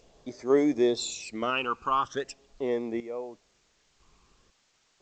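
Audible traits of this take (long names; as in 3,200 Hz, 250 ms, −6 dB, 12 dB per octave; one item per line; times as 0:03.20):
sample-and-hold tremolo 2 Hz, depth 100%
phaser sweep stages 12, 0.42 Hz, lowest notch 580–3,500 Hz
a quantiser's noise floor 12 bits, dither triangular
G.722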